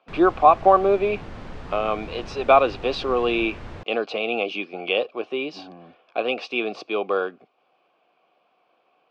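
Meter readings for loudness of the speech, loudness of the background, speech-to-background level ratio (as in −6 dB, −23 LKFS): −22.5 LKFS, −39.5 LKFS, 17.0 dB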